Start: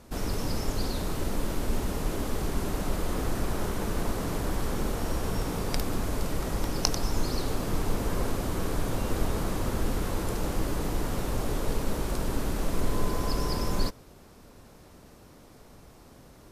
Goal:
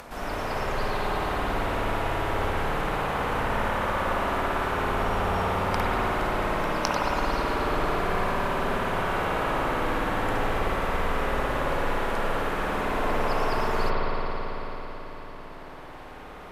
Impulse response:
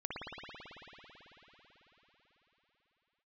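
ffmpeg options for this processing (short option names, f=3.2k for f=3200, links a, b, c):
-filter_complex "[0:a]acrossover=split=580 2900:gain=0.2 1 0.251[a][b][c];[a][b][c]amix=inputs=3:normalize=0[d];[1:a]atrim=start_sample=2205[e];[d][e]afir=irnorm=-1:irlink=0,acompressor=mode=upward:threshold=-43dB:ratio=2.5,volume=8.5dB"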